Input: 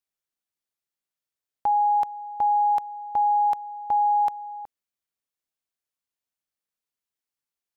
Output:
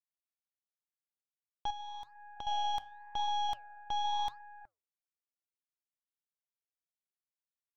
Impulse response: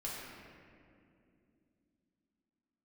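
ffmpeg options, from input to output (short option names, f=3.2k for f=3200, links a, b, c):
-filter_complex "[0:a]aeval=exprs='0.141*(cos(1*acos(clip(val(0)/0.141,-1,1)))-cos(1*PI/2))+0.00794*(cos(2*acos(clip(val(0)/0.141,-1,1)))-cos(2*PI/2))+0.0501*(cos(4*acos(clip(val(0)/0.141,-1,1)))-cos(4*PI/2))+0.00891*(cos(7*acos(clip(val(0)/0.141,-1,1)))-cos(7*PI/2))+0.00178*(cos(8*acos(clip(val(0)/0.141,-1,1)))-cos(8*PI/2))':c=same,flanger=delay=2.4:depth=7.1:regen=-87:speed=0.89:shape=sinusoidal,asettb=1/sr,asplit=3[a][b][c];[a]atrim=end=1.704[d];[b]atrim=start=1.7:end=2.47,asetpts=PTS-STARTPTS,afade=t=in:d=0.004:c=qsin,afade=t=out:st=0.766:d=0.004:c=qsin,acompressor=threshold=-32dB:ratio=12[e];[c]atrim=start=2.466[f];[d][e]acrossfade=d=0.004:c1=hsin:c2=qsin[g];[g][f]acrossfade=d=0.004:c1=qsin:c2=hsin,volume=-8.5dB"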